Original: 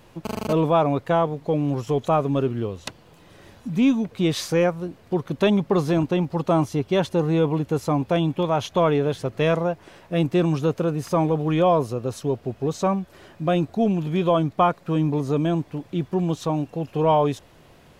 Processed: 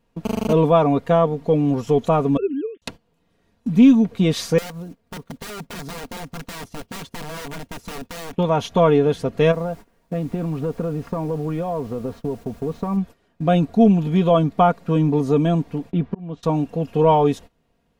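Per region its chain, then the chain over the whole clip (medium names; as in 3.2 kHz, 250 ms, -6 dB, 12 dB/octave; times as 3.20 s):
2.37–2.82 s: formants replaced by sine waves + Butterworth band-stop 830 Hz, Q 0.57 + hum notches 50/100/150/200 Hz
4.58–8.33 s: block-companded coder 5-bit + integer overflow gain 18.5 dB + compression 8:1, threshold -34 dBFS
9.51–12.96 s: low-pass 2 kHz + compression 16:1, threshold -24 dBFS + added noise pink -53 dBFS
15.91–16.43 s: low-pass 2.7 kHz + slow attack 547 ms
whole clip: gate -39 dBFS, range -20 dB; bass shelf 420 Hz +6 dB; comb 4.3 ms, depth 53%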